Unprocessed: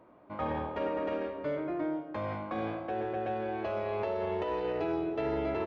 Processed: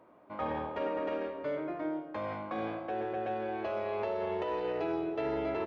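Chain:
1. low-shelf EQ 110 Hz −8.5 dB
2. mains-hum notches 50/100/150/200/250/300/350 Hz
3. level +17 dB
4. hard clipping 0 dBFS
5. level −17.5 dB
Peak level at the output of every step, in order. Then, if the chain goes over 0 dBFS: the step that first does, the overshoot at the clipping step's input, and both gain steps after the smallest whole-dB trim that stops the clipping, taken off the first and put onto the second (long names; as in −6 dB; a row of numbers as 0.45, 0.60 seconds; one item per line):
−21.5, −21.5, −4.5, −4.5, −22.0 dBFS
no step passes full scale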